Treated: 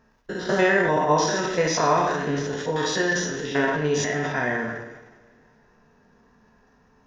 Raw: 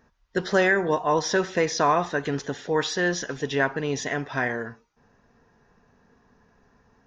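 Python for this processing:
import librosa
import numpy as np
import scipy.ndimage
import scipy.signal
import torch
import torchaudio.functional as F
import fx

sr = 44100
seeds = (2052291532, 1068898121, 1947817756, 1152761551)

y = fx.spec_steps(x, sr, hold_ms=100)
y = fx.rev_double_slope(y, sr, seeds[0], early_s=0.75, late_s=2.4, knee_db=-18, drr_db=0.5)
y = fx.transient(y, sr, attack_db=3, sustain_db=8)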